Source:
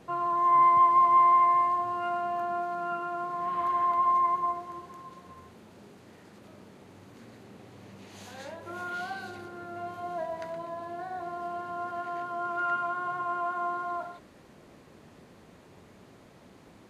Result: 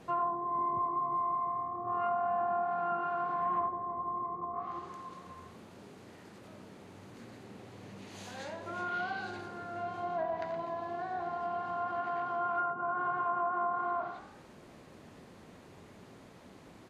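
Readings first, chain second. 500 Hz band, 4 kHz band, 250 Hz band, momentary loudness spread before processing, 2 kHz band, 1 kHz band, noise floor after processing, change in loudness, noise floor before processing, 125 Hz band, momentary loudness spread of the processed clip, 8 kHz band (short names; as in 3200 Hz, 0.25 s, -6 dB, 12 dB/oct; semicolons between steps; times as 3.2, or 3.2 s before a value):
-1.0 dB, -2.5 dB, -2.5 dB, 22 LU, -1.5 dB, -7.5 dB, -55 dBFS, -7.0 dB, -55 dBFS, -0.5 dB, 22 LU, n/a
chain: de-hum 69.89 Hz, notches 9; frequency-shifting echo 85 ms, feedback 54%, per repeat +40 Hz, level -13 dB; treble ducked by the level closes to 510 Hz, closed at -24 dBFS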